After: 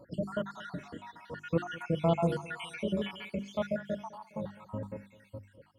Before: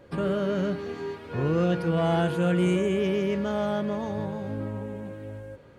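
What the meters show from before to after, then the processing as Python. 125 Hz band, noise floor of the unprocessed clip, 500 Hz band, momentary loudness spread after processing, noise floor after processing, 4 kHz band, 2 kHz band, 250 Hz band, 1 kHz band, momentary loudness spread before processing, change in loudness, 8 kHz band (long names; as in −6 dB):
−8.5 dB, −51 dBFS, −8.5 dB, 17 LU, −63 dBFS, −5.5 dB, −6.5 dB, −9.0 dB, −6.0 dB, 13 LU, −8.0 dB, −8.0 dB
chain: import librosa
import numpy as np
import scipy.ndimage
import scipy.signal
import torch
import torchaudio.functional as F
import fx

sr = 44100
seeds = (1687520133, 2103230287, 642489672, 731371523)

p1 = fx.spec_dropout(x, sr, seeds[0], share_pct=70)
p2 = fx.hum_notches(p1, sr, base_hz=50, count=8)
p3 = fx.notch_comb(p2, sr, f0_hz=400.0)
y = p3 + fx.echo_feedback(p3, sr, ms=205, feedback_pct=48, wet_db=-19.5, dry=0)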